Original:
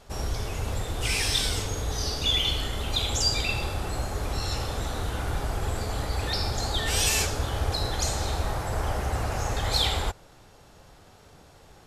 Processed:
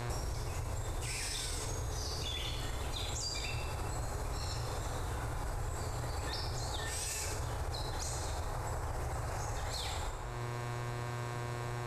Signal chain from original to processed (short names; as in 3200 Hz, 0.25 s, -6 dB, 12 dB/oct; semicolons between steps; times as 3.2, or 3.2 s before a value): buzz 120 Hz, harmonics 36, -48 dBFS -4 dB/oct; thirty-one-band EQ 125 Hz +6 dB, 200 Hz -11 dB, 1000 Hz +4 dB, 3150 Hz -9 dB, 8000 Hz +6 dB; on a send at -6.5 dB: reverb RT60 0.75 s, pre-delay 23 ms; on the sum: limiter -20 dBFS, peak gain reduction 11 dB; compressor 10:1, threshold -42 dBFS, peak gain reduction 17.5 dB; gain +7 dB